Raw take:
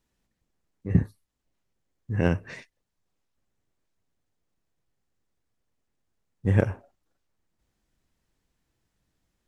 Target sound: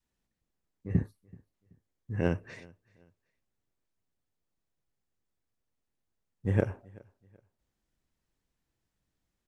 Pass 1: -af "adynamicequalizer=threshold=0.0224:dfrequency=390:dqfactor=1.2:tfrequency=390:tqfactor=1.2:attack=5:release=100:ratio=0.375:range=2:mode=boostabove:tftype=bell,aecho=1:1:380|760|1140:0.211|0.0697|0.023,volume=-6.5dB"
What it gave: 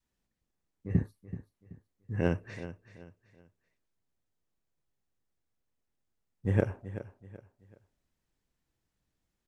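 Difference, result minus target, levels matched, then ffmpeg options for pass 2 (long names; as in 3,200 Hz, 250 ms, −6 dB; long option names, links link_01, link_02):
echo-to-direct +11.5 dB
-af "adynamicequalizer=threshold=0.0224:dfrequency=390:dqfactor=1.2:tfrequency=390:tqfactor=1.2:attack=5:release=100:ratio=0.375:range=2:mode=boostabove:tftype=bell,aecho=1:1:380|760:0.0562|0.0186,volume=-6.5dB"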